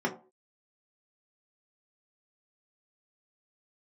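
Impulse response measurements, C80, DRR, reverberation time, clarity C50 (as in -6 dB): 17.0 dB, -1.5 dB, 0.40 s, 12.0 dB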